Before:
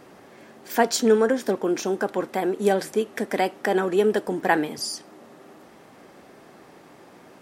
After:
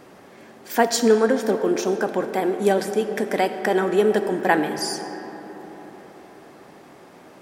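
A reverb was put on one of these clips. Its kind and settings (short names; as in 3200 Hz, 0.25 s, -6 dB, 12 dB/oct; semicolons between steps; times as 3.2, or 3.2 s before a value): digital reverb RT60 4.7 s, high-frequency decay 0.4×, pre-delay 25 ms, DRR 8.5 dB; gain +1.5 dB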